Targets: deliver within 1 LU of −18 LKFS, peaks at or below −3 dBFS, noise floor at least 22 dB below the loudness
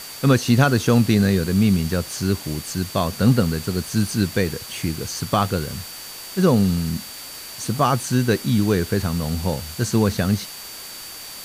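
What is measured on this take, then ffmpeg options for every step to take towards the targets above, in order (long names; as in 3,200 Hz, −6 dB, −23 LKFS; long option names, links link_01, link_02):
interfering tone 4,600 Hz; level of the tone −39 dBFS; background noise floor −36 dBFS; target noise floor −43 dBFS; integrated loudness −21.0 LKFS; sample peak −4.5 dBFS; target loudness −18.0 LKFS
→ -af "bandreject=frequency=4600:width=30"
-af "afftdn=noise_reduction=7:noise_floor=-36"
-af "volume=3dB,alimiter=limit=-3dB:level=0:latency=1"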